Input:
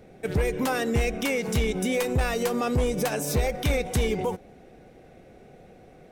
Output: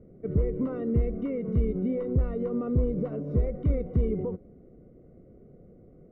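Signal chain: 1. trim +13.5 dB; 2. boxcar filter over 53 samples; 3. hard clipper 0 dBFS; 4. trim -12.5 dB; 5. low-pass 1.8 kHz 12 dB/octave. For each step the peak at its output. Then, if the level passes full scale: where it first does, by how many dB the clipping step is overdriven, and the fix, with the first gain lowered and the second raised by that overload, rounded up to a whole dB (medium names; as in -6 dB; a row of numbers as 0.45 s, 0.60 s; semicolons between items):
-3.5 dBFS, -4.0 dBFS, -4.0 dBFS, -16.5 dBFS, -16.5 dBFS; nothing clips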